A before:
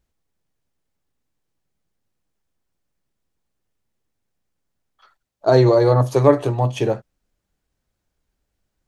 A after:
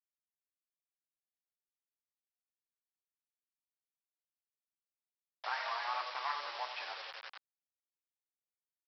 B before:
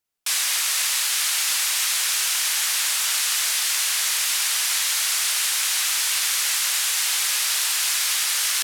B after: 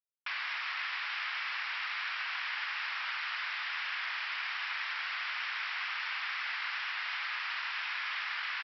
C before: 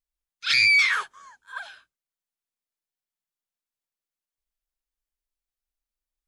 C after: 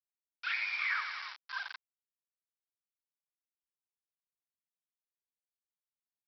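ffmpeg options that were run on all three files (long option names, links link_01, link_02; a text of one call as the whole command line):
ffmpeg -i in.wav -filter_complex "[0:a]aecho=1:1:90|180|270|360|450|540:0.282|0.161|0.0916|0.0522|0.0298|0.017,asplit=2[link_01][link_02];[link_02]acrusher=bits=2:mode=log:mix=0:aa=0.000001,volume=-3dB[link_03];[link_01][link_03]amix=inputs=2:normalize=0,afftfilt=real='re*lt(hypot(re,im),1.26)':imag='im*lt(hypot(re,im),1.26)':win_size=1024:overlap=0.75,lowpass=frequency=2400:width=0.5412,lowpass=frequency=2400:width=1.3066,acompressor=threshold=-31dB:ratio=2,aresample=11025,acrusher=bits=5:mix=0:aa=0.000001,aresample=44100,highpass=frequency=900:width=0.5412,highpass=frequency=900:width=1.3066,volume=-5.5dB" out.wav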